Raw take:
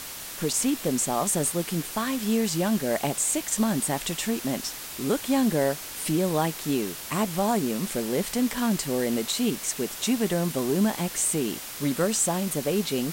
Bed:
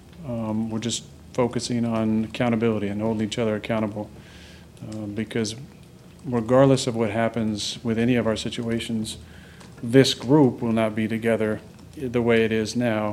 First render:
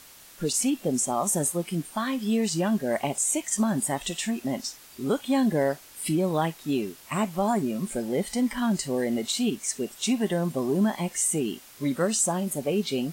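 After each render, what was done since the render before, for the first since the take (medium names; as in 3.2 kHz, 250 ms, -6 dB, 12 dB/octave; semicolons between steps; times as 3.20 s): noise print and reduce 12 dB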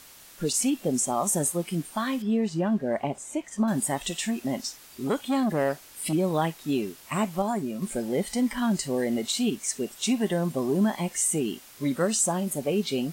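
2.22–3.68 s: low-pass 1.3 kHz 6 dB/octave; 5.07–6.13 s: transformer saturation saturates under 580 Hz; 7.42–7.82 s: gain -3.5 dB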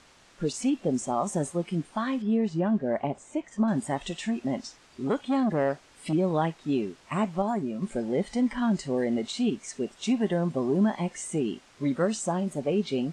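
low-pass 8.3 kHz 24 dB/octave; treble shelf 3.4 kHz -11 dB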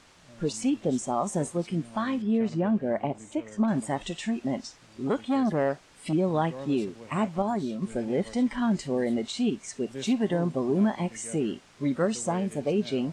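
add bed -23 dB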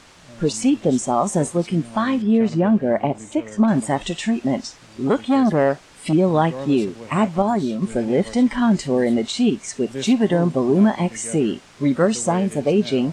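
trim +8.5 dB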